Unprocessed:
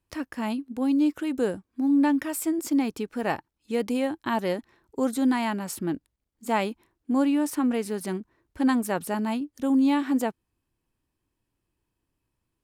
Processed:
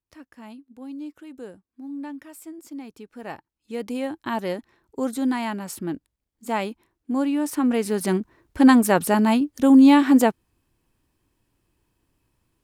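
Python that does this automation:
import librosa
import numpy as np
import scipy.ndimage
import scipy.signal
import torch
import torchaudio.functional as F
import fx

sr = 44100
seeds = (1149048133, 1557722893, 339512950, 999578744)

y = fx.gain(x, sr, db=fx.line((2.78, -13.0), (4.16, -0.5), (7.31, -0.5), (8.19, 9.0)))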